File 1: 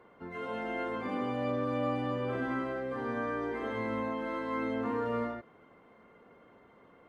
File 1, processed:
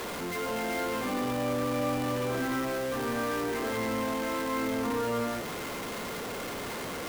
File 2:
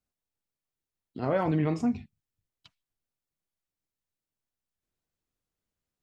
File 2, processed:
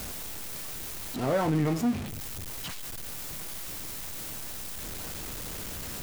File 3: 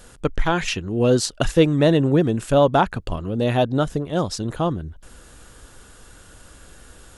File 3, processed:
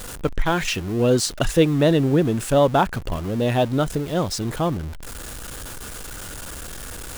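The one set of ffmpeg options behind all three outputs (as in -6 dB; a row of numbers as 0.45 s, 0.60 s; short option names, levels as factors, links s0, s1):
-af "aeval=exprs='val(0)+0.5*0.0335*sgn(val(0))':c=same,highshelf=f=9600:g=4,volume=0.841"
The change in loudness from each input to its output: +3.0 LU, -4.0 LU, -0.5 LU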